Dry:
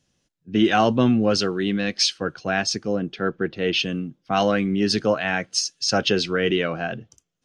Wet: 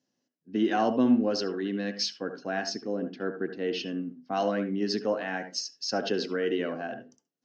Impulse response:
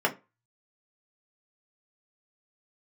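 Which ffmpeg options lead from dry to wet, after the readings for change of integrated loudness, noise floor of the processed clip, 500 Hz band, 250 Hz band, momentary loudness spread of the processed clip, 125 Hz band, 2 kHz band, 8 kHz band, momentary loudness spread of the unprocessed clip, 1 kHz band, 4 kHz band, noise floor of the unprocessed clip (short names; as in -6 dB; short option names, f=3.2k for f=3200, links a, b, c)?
-7.5 dB, -83 dBFS, -6.5 dB, -6.0 dB, 10 LU, -13.0 dB, -10.0 dB, -12.0 dB, 9 LU, -7.5 dB, -10.5 dB, -74 dBFS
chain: -filter_complex "[0:a]highpass=250,equalizer=f=260:t=q:w=4:g=8,equalizer=f=1.3k:t=q:w=4:g=-6,equalizer=f=2.4k:t=q:w=4:g=-9,equalizer=f=3.4k:t=q:w=4:g=-9,lowpass=f=5.9k:w=0.5412,lowpass=f=5.9k:w=1.3066,asplit=2[a][b];[1:a]atrim=start_sample=2205,adelay=68[c];[b][c]afir=irnorm=-1:irlink=0,volume=-21.5dB[d];[a][d]amix=inputs=2:normalize=0,volume=-7dB"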